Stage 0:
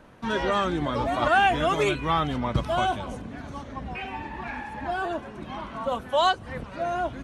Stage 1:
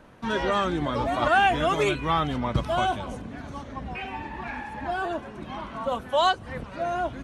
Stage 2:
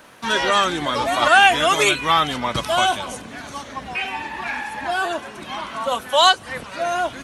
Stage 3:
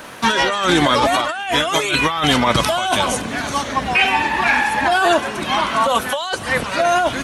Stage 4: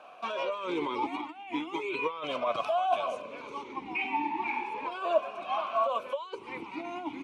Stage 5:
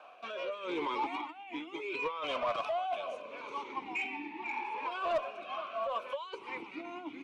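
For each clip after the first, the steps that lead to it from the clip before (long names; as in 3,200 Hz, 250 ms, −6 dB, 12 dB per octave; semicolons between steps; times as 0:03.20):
no processing that can be heard
spectral tilt +3.5 dB per octave; level +7 dB
compressor whose output falls as the input rises −24 dBFS, ratio −1; level +7 dB
formant filter swept between two vowels a-u 0.36 Hz; level −4 dB
rotating-speaker cabinet horn 0.75 Hz; asymmetric clip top −23 dBFS; mid-hump overdrive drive 14 dB, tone 3,900 Hz, clips at −17 dBFS; level −6 dB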